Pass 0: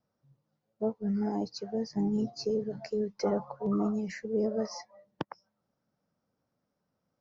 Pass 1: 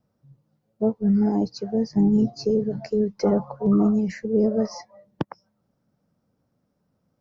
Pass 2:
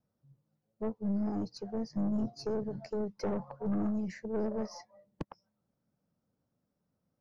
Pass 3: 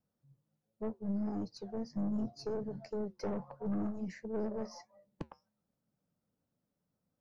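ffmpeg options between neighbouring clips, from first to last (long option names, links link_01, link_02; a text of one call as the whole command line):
ffmpeg -i in.wav -af "lowshelf=frequency=410:gain=10,volume=3dB" out.wav
ffmpeg -i in.wav -af "aeval=exprs='(tanh(8.91*val(0)+0.4)-tanh(0.4))/8.91':channel_layout=same,volume=-8.5dB" out.wav
ffmpeg -i in.wav -af "flanger=delay=3.9:depth=3.2:regen=-80:speed=1.4:shape=sinusoidal,volume=1dB" out.wav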